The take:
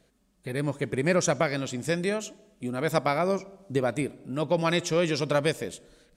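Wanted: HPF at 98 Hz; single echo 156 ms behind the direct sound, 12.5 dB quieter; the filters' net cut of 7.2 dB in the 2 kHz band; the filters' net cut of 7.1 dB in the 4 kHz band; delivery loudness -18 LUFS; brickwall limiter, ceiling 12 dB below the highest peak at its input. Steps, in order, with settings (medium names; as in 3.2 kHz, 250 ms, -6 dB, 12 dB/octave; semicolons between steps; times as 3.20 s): high-pass 98 Hz; peaking EQ 2 kHz -7.5 dB; peaking EQ 4 kHz -7 dB; peak limiter -23 dBFS; delay 156 ms -12.5 dB; trim +16 dB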